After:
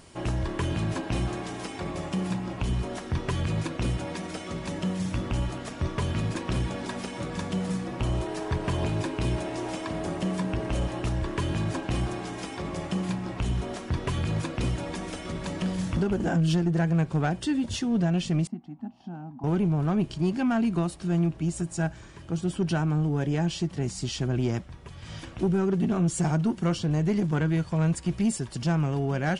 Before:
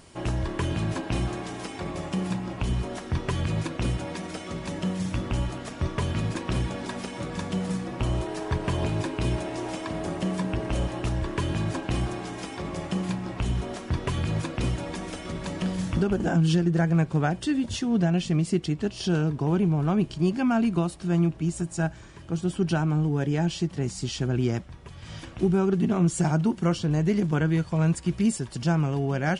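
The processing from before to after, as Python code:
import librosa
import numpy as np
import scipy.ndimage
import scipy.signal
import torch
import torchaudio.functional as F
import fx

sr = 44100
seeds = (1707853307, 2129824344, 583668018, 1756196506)

y = fx.double_bandpass(x, sr, hz=440.0, octaves=1.7, at=(18.47, 19.44))
y = 10.0 ** (-17.0 / 20.0) * np.tanh(y / 10.0 ** (-17.0 / 20.0))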